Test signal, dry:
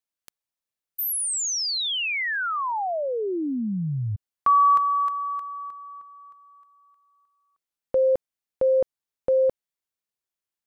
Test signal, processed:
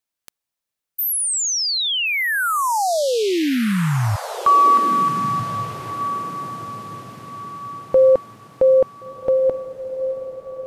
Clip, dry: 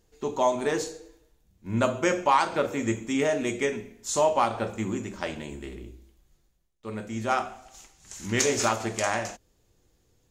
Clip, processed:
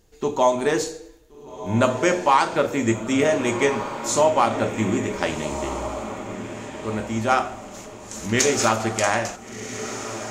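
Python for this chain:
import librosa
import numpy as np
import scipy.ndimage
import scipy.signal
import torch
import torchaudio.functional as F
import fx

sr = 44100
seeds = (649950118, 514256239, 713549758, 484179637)

p1 = fx.rider(x, sr, range_db=4, speed_s=0.5)
p2 = x + (p1 * 10.0 ** (-1.0 / 20.0))
y = fx.echo_diffused(p2, sr, ms=1455, feedback_pct=41, wet_db=-10)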